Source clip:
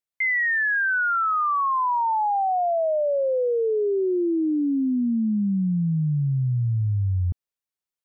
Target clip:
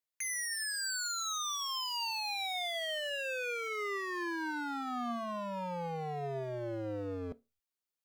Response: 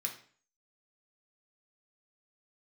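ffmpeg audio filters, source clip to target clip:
-filter_complex "[0:a]aeval=exprs='0.0316*(abs(mod(val(0)/0.0316+3,4)-2)-1)':c=same,asettb=1/sr,asplit=3[s0][s1][s2];[s0]atrim=end=1.454[s3];[s1]atrim=start=1.45:end=3.11,asetpts=PTS-STARTPTS,afade=t=in:d=0.004:c=qsin,afade=t=out:st=1.656:d=0.004:c=qsin,aeval=exprs='0.0316*(cos(1*acos(clip(val(0)/0.0316,-1,1)))-cos(1*PI/2))+0.00126*(cos(4*acos(clip(val(0)/0.0316,-1,1)))-cos(4*PI/2))':c=same[s4];[s2]atrim=start=3.106[s5];[s3][s4]acrossfade=d=0.004:c1=hsin:c2=qsin[s6];[s6][s5]acrossfade=d=0.004:c1=qsin:c2=hsin,asplit=2[s7][s8];[1:a]atrim=start_sample=2205,asetrate=83790,aresample=44100,lowshelf=f=170:g=11[s9];[s8][s9]afir=irnorm=-1:irlink=0,volume=0.447[s10];[s7][s10]amix=inputs=2:normalize=0,volume=0.708"

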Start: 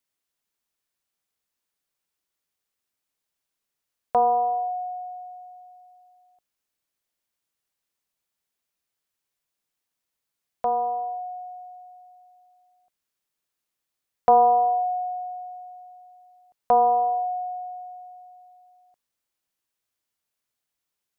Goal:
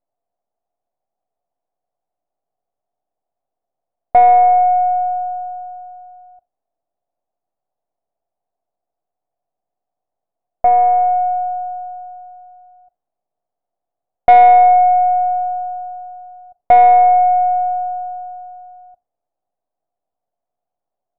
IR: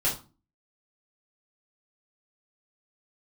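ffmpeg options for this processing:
-filter_complex "[0:a]asplit=2[s0][s1];[s1]acompressor=threshold=0.0316:ratio=12,volume=1.06[s2];[s0][s2]amix=inputs=2:normalize=0,aeval=exprs='max(val(0),0)':c=same,lowpass=f=710:t=q:w=7.4,asoftclip=type=tanh:threshold=0.75,asplit=2[s3][s4];[1:a]atrim=start_sample=2205,atrim=end_sample=3969[s5];[s4][s5]afir=irnorm=-1:irlink=0,volume=0.0531[s6];[s3][s6]amix=inputs=2:normalize=0"

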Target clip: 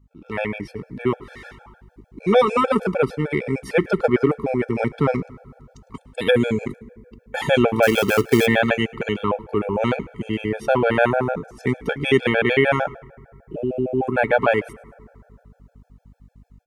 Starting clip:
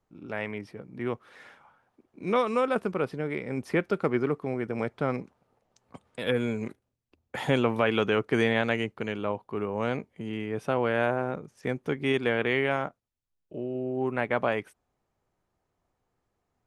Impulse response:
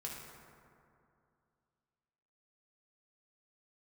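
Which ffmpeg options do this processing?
-filter_complex "[0:a]aeval=exprs='val(0)+0.00158*(sin(2*PI*50*n/s)+sin(2*PI*2*50*n/s)/2+sin(2*PI*3*50*n/s)/3+sin(2*PI*4*50*n/s)/4+sin(2*PI*5*50*n/s)/5)':c=same,dynaudnorm=f=180:g=3:m=2.82,asplit=3[s0][s1][s2];[s0]afade=t=out:st=7.82:d=0.02[s3];[s1]acrusher=bits=3:mode=log:mix=0:aa=0.000001,afade=t=in:st=7.82:d=0.02,afade=t=out:st=8.45:d=0.02[s4];[s2]afade=t=in:st=8.45:d=0.02[s5];[s3][s4][s5]amix=inputs=3:normalize=0,asplit=3[s6][s7][s8];[s7]adelay=106,afreqshift=-73,volume=0.075[s9];[s8]adelay=212,afreqshift=-146,volume=0.0269[s10];[s6][s9][s10]amix=inputs=3:normalize=0,asplit=2[s11][s12];[1:a]atrim=start_sample=2205[s13];[s12][s13]afir=irnorm=-1:irlink=0,volume=0.126[s14];[s11][s14]amix=inputs=2:normalize=0,afftfilt=real='re*gt(sin(2*PI*6.6*pts/sr)*(1-2*mod(floor(b*sr/1024/450),2)),0)':imag='im*gt(sin(2*PI*6.6*pts/sr)*(1-2*mod(floor(b*sr/1024/450),2)),0)':win_size=1024:overlap=0.75,volume=1.33"

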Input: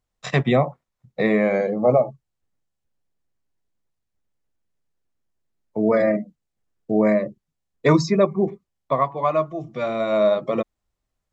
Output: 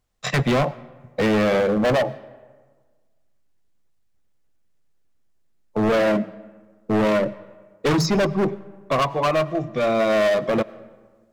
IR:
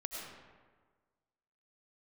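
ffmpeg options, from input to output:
-filter_complex "[0:a]volume=13.3,asoftclip=hard,volume=0.075,bandreject=f=940:w=22,asplit=2[s0][s1];[1:a]atrim=start_sample=2205[s2];[s1][s2]afir=irnorm=-1:irlink=0,volume=0.141[s3];[s0][s3]amix=inputs=2:normalize=0,volume=1.78"

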